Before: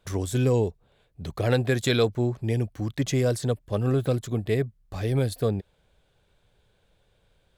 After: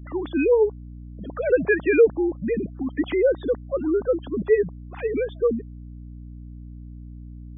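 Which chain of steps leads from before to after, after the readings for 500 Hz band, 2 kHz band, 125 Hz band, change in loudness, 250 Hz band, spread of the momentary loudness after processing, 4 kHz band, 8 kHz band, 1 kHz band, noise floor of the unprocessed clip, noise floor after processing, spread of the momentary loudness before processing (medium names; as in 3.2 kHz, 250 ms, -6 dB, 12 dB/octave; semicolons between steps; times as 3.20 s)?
+7.0 dB, +6.0 dB, -12.5 dB, +3.5 dB, +2.5 dB, 22 LU, under -10 dB, under -40 dB, -1.5 dB, -67 dBFS, -40 dBFS, 7 LU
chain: formants replaced by sine waves; hum 60 Hz, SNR 15 dB; spectral gate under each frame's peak -25 dB strong; trim +3 dB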